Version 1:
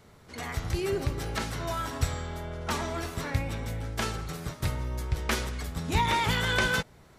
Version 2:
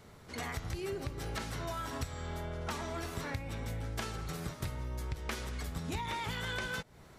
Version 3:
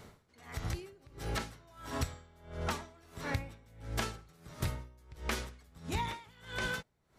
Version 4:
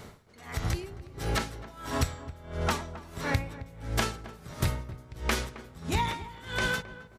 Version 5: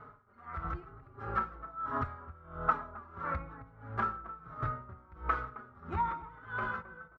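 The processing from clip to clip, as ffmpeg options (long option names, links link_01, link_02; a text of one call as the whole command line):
ffmpeg -i in.wav -af "acompressor=threshold=-35dB:ratio=6" out.wav
ffmpeg -i in.wav -af "aeval=exprs='val(0)*pow(10,-26*(0.5-0.5*cos(2*PI*1.5*n/s))/20)':channel_layout=same,volume=4dB" out.wav
ffmpeg -i in.wav -filter_complex "[0:a]asplit=2[link_01][link_02];[link_02]adelay=266,lowpass=frequency=1100:poles=1,volume=-13.5dB,asplit=2[link_03][link_04];[link_04]adelay=266,lowpass=frequency=1100:poles=1,volume=0.37,asplit=2[link_05][link_06];[link_06]adelay=266,lowpass=frequency=1100:poles=1,volume=0.37,asplit=2[link_07][link_08];[link_08]adelay=266,lowpass=frequency=1100:poles=1,volume=0.37[link_09];[link_01][link_03][link_05][link_07][link_09]amix=inputs=5:normalize=0,volume=7dB" out.wav
ffmpeg -i in.wav -filter_complex "[0:a]lowpass=frequency=1300:width_type=q:width=7.6,asplit=2[link_01][link_02];[link_02]adelay=4.2,afreqshift=-1.1[link_03];[link_01][link_03]amix=inputs=2:normalize=1,volume=-7dB" out.wav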